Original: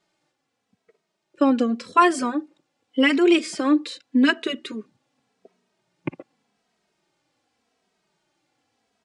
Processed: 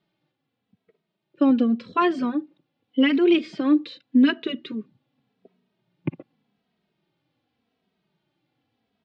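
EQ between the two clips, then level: ladder low-pass 4300 Hz, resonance 40%; bell 140 Hz +14 dB 2.7 oct; 0.0 dB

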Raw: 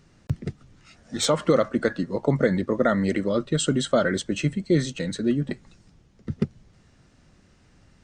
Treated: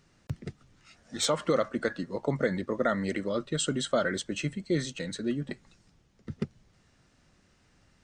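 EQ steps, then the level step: low shelf 500 Hz -5.5 dB; -3.5 dB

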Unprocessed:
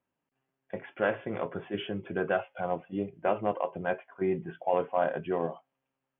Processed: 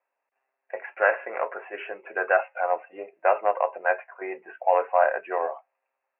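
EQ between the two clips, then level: HPF 530 Hz 24 dB/oct; dynamic EQ 1500 Hz, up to +5 dB, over -48 dBFS, Q 1.6; rippled Chebyshev low-pass 2700 Hz, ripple 3 dB; +8.0 dB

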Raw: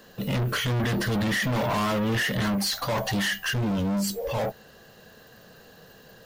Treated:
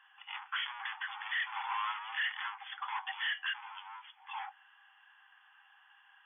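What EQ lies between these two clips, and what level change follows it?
brick-wall FIR band-pass 760–3500 Hz; -6.5 dB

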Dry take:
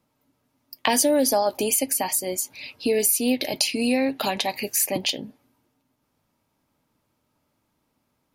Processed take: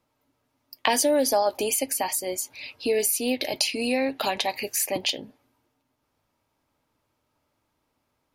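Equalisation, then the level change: bell 190 Hz -8 dB 1.1 oct; high shelf 7400 Hz -5.5 dB; 0.0 dB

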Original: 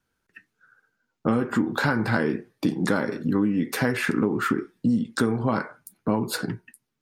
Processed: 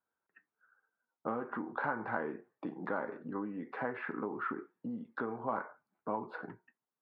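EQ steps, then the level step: band-pass 920 Hz, Q 1.3; air absorption 450 m; -4.0 dB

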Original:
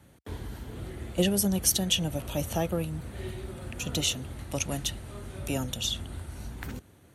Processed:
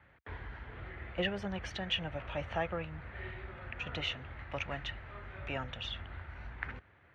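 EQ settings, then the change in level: ladder low-pass 2400 Hz, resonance 40%; low shelf 130 Hz -5 dB; bell 250 Hz -13.5 dB 2.3 oct; +9.0 dB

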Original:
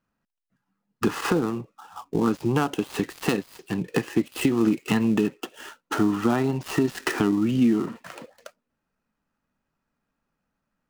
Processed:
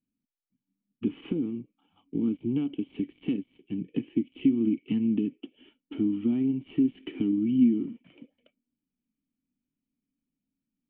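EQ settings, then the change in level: vocal tract filter i; notch 3500 Hz, Q 26; +1.5 dB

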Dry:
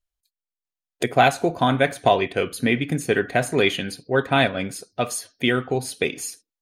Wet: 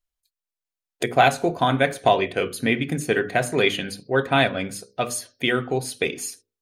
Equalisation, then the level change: notches 50/100/150/200/250 Hz; notches 60/120/180/240/300/360/420/480/540/600 Hz; 0.0 dB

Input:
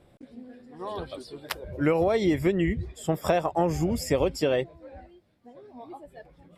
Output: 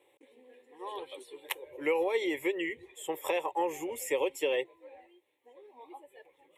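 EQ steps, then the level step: HPF 570 Hz 12 dB/oct; bell 1200 Hz -13 dB 0.3 oct; fixed phaser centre 1000 Hz, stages 8; +2.0 dB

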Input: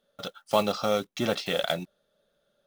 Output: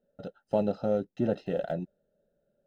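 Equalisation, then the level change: running mean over 39 samples; +2.0 dB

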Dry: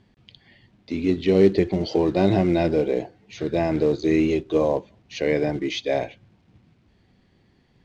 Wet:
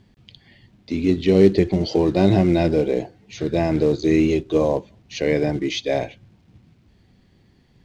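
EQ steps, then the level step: low shelf 270 Hz +6 dB; high shelf 4800 Hz +8 dB; 0.0 dB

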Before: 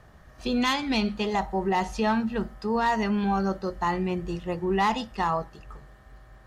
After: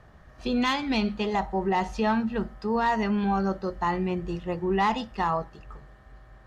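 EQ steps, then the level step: high shelf 7000 Hz -11 dB; 0.0 dB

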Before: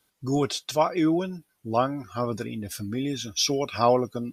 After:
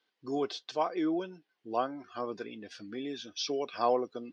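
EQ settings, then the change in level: dynamic EQ 2500 Hz, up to -7 dB, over -44 dBFS, Q 1.2; speaker cabinet 460–4100 Hz, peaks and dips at 600 Hz -8 dB, 910 Hz -6 dB, 1300 Hz -8 dB, 2300 Hz -5 dB, 3700 Hz -4 dB; 0.0 dB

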